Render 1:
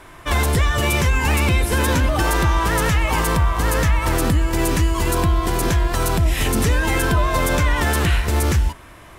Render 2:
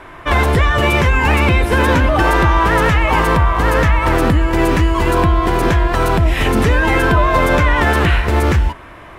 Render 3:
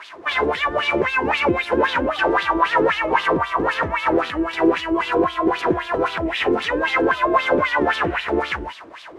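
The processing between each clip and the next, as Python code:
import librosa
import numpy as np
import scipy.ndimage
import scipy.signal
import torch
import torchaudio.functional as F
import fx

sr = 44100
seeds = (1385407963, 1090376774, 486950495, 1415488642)

y1 = fx.bass_treble(x, sr, bass_db=-4, treble_db=-15)
y1 = F.gain(torch.from_numpy(y1), 7.5).numpy()
y2 = fx.delta_mod(y1, sr, bps=64000, step_db=-29.5)
y2 = fx.wah_lfo(y2, sr, hz=3.8, low_hz=330.0, high_hz=3700.0, q=3.3)
y2 = F.gain(torch.from_numpy(y2), 5.0).numpy()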